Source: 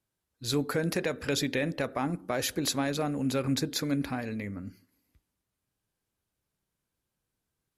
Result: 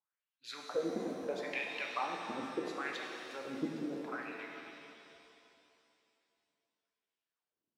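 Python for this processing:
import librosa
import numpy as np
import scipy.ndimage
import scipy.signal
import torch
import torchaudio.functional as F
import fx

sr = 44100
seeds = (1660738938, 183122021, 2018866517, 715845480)

y = fx.hpss(x, sr, part='harmonic', gain_db=-12)
y = fx.wah_lfo(y, sr, hz=0.74, low_hz=240.0, high_hz=3000.0, q=3.8)
y = fx.rev_shimmer(y, sr, seeds[0], rt60_s=2.7, semitones=7, shimmer_db=-8, drr_db=0.0)
y = y * 10.0 ** (2.0 / 20.0)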